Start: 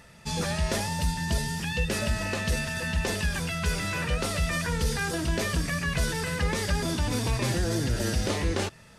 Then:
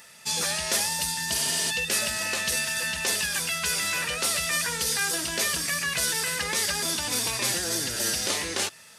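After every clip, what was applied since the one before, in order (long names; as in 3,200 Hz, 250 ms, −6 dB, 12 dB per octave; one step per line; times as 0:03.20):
spectral tilt +3.5 dB per octave
healed spectral selection 0:01.38–0:01.68, 220–10,000 Hz before
high-pass filter 110 Hz 6 dB per octave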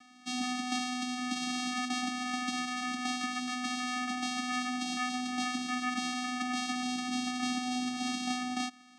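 channel vocoder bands 4, square 250 Hz
level −5 dB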